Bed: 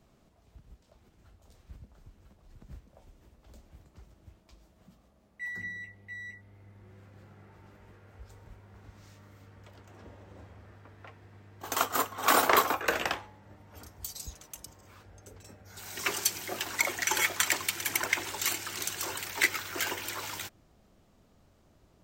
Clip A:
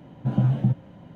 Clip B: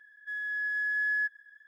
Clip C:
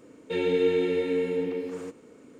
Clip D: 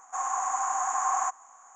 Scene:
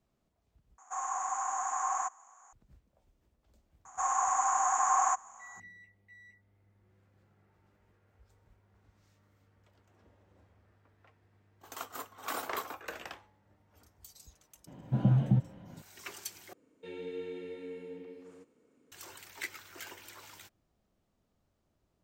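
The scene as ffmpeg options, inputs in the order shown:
-filter_complex "[4:a]asplit=2[s0][s1];[0:a]volume=0.2,asplit=3[s2][s3][s4];[s2]atrim=end=0.784[s5];[s0]atrim=end=1.75,asetpts=PTS-STARTPTS,volume=0.531[s6];[s3]atrim=start=2.526:end=16.534[s7];[3:a]atrim=end=2.39,asetpts=PTS-STARTPTS,volume=0.141[s8];[s4]atrim=start=18.916[s9];[s1]atrim=end=1.75,asetpts=PTS-STARTPTS,afade=t=in:d=0.004:c=hsin,afade=t=out:st=1.746:d=0.004:c=hsin,adelay=169785S[s10];[1:a]atrim=end=1.15,asetpts=PTS-STARTPTS,volume=0.596,afade=t=in:d=0.004:c=hsin,afade=t=out:st=1.146:d=0.004:c=hsin,adelay=14670[s11];[s5][s6]acrossfade=d=0.004:c1=hsin:c2=hsin[s12];[s12][s7]acrossfade=d=0.004:c1=hsin:c2=hsin[s13];[s13][s8]acrossfade=d=0.004:c1=hsin:c2=hsin[s14];[s14][s9]acrossfade=d=0.004:c1=hsin:c2=hsin[s15];[s15][s10][s11]amix=inputs=3:normalize=0"

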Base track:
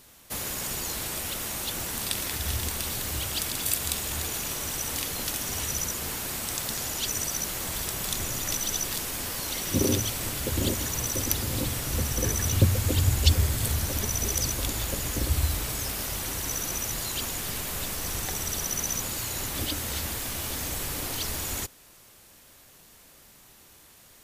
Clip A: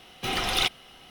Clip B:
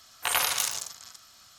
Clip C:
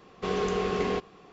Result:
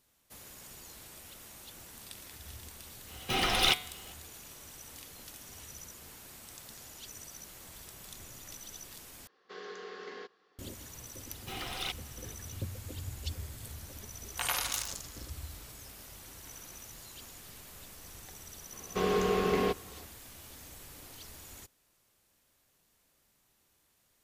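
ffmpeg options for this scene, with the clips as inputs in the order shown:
-filter_complex "[1:a]asplit=2[s0][s1];[3:a]asplit=2[s2][s3];[2:a]asplit=2[s4][s5];[0:a]volume=0.126[s6];[s0]bandreject=f=147.3:t=h:w=4,bandreject=f=294.6:t=h:w=4,bandreject=f=441.9:t=h:w=4,bandreject=f=589.2:t=h:w=4,bandreject=f=736.5:t=h:w=4,bandreject=f=883.8:t=h:w=4,bandreject=f=1031.1:t=h:w=4,bandreject=f=1178.4:t=h:w=4,bandreject=f=1325.7:t=h:w=4,bandreject=f=1473:t=h:w=4,bandreject=f=1620.3:t=h:w=4,bandreject=f=1767.6:t=h:w=4,bandreject=f=1914.9:t=h:w=4,bandreject=f=2062.2:t=h:w=4,bandreject=f=2209.5:t=h:w=4,bandreject=f=2356.8:t=h:w=4,bandreject=f=2504.1:t=h:w=4,bandreject=f=2651.4:t=h:w=4,bandreject=f=2798.7:t=h:w=4,bandreject=f=2946:t=h:w=4,bandreject=f=3093.3:t=h:w=4,bandreject=f=3240.6:t=h:w=4,bandreject=f=3387.9:t=h:w=4,bandreject=f=3535.2:t=h:w=4,bandreject=f=3682.5:t=h:w=4,bandreject=f=3829.8:t=h:w=4,bandreject=f=3977.1:t=h:w=4,bandreject=f=4124.4:t=h:w=4,bandreject=f=4271.7:t=h:w=4,bandreject=f=4419:t=h:w=4,bandreject=f=4566.3:t=h:w=4,bandreject=f=4713.6:t=h:w=4[s7];[s2]highpass=470,equalizer=f=670:t=q:w=4:g=-10,equalizer=f=1000:t=q:w=4:g=-5,equalizer=f=1700:t=q:w=4:g=7,equalizer=f=2500:t=q:w=4:g=-7,equalizer=f=4500:t=q:w=4:g=4,lowpass=f=6400:w=0.5412,lowpass=f=6400:w=1.3066[s8];[s1]aecho=1:1:462:0.0794[s9];[s5]acompressor=threshold=0.00891:ratio=12:attack=1.9:release=206:knee=1:detection=peak[s10];[s6]asplit=2[s11][s12];[s11]atrim=end=9.274[s13];[s8]atrim=end=1.32,asetpts=PTS-STARTPTS,volume=0.251[s14];[s12]atrim=start=10.586[s15];[s7]atrim=end=1.1,asetpts=PTS-STARTPTS,volume=0.891,afade=t=in:d=0.05,afade=t=out:st=1.05:d=0.05,adelay=3060[s16];[s9]atrim=end=1.1,asetpts=PTS-STARTPTS,volume=0.237,afade=t=in:d=0.004:c=hsin,afade=t=out:st=1.096:d=0.004:c=hsin,adelay=11240[s17];[s4]atrim=end=1.58,asetpts=PTS-STARTPTS,volume=0.447,afade=t=in:d=0.004:c=hsin,afade=t=out:st=1.576:d=0.004:c=hsin,adelay=14140[s18];[s10]atrim=end=1.58,asetpts=PTS-STARTPTS,volume=0.251,afade=t=in:d=0.004:c=hsin,afade=t=out:st=1.576:d=0.004:c=hsin,adelay=16220[s19];[s3]atrim=end=1.32,asetpts=PTS-STARTPTS,volume=0.944,afade=t=in:d=0.004:c=hsin,afade=t=out:st=1.316:d=0.004:c=hsin,adelay=18730[s20];[s13][s14]acrossfade=d=0.004:c1=hsin:c2=hsin[s21];[s21][s15]acrossfade=d=0.004:c1=hsin:c2=hsin[s22];[s22][s16][s17][s18][s19][s20]amix=inputs=6:normalize=0"

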